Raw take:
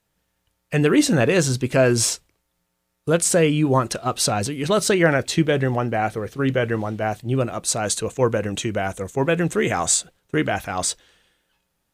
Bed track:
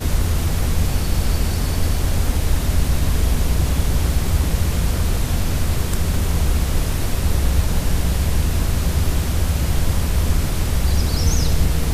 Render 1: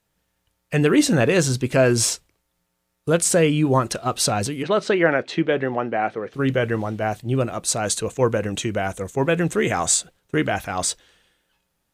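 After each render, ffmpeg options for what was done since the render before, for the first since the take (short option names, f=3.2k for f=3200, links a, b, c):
-filter_complex "[0:a]asplit=3[a][b][c];[a]afade=t=out:st=4.62:d=0.02[d];[b]highpass=230,lowpass=3k,afade=t=in:st=4.62:d=0.02,afade=t=out:st=6.33:d=0.02[e];[c]afade=t=in:st=6.33:d=0.02[f];[d][e][f]amix=inputs=3:normalize=0"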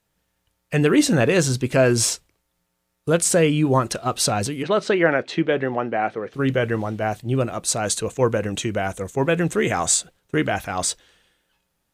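-af anull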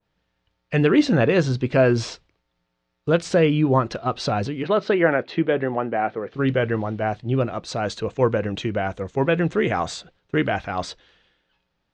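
-af "lowpass=f=4.8k:w=0.5412,lowpass=f=4.8k:w=1.3066,adynamicequalizer=threshold=0.0141:dfrequency=1800:dqfactor=0.7:tfrequency=1800:tqfactor=0.7:attack=5:release=100:ratio=0.375:range=2.5:mode=cutabove:tftype=highshelf"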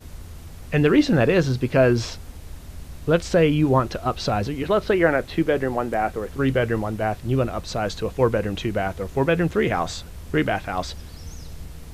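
-filter_complex "[1:a]volume=-20dB[a];[0:a][a]amix=inputs=2:normalize=0"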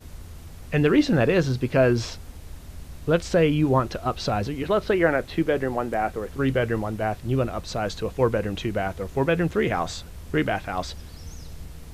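-af "volume=-2dB"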